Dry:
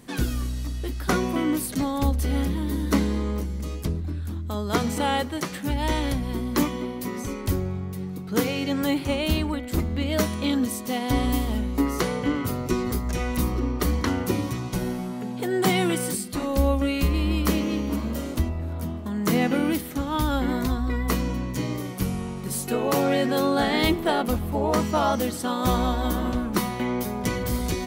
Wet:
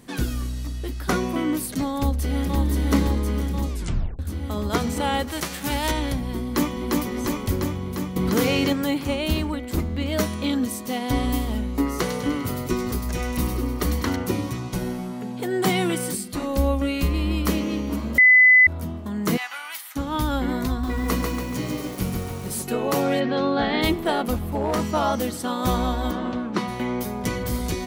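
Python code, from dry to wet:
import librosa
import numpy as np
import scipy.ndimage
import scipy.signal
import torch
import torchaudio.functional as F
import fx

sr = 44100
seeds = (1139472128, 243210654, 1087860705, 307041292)

y = fx.echo_throw(x, sr, start_s=1.97, length_s=0.62, ms=520, feedback_pct=75, wet_db=-2.0)
y = fx.envelope_flatten(y, sr, power=0.6, at=(5.27, 5.9), fade=0.02)
y = fx.echo_throw(y, sr, start_s=6.41, length_s=0.51, ms=350, feedback_pct=75, wet_db=-1.5)
y = fx.env_flatten(y, sr, amount_pct=70, at=(8.16, 8.73))
y = fx.echo_wet_highpass(y, sr, ms=100, feedback_pct=57, hz=2200.0, wet_db=-5.5, at=(11.91, 14.16))
y = fx.cheby2_highpass(y, sr, hz=450.0, order=4, stop_db=40, at=(19.36, 19.95), fade=0.02)
y = fx.echo_crushed(y, sr, ms=142, feedback_pct=55, bits=7, wet_db=-3.5, at=(20.69, 22.63))
y = fx.lowpass(y, sr, hz=4400.0, slope=24, at=(23.19, 23.81), fade=0.02)
y = fx.clip_hard(y, sr, threshold_db=-18.0, at=(24.35, 24.86))
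y = fx.bandpass_edges(y, sr, low_hz=140.0, high_hz=4500.0, at=(26.1, 26.67), fade=0.02)
y = fx.edit(y, sr, fx.tape_stop(start_s=3.7, length_s=0.49),
    fx.bleep(start_s=18.18, length_s=0.49, hz=2010.0, db=-9.5), tone=tone)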